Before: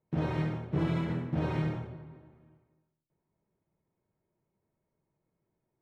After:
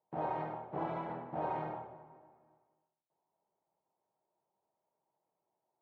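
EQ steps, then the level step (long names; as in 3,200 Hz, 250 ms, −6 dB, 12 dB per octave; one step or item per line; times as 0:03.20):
resonant band-pass 800 Hz, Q 3.5
+8.0 dB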